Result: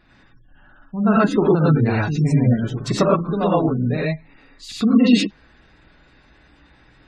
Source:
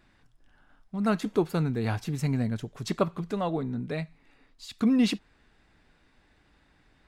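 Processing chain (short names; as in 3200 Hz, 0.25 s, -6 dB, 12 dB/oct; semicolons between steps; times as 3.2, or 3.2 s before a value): non-linear reverb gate 0.14 s rising, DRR -5.5 dB; spectral gate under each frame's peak -30 dB strong; gain +5 dB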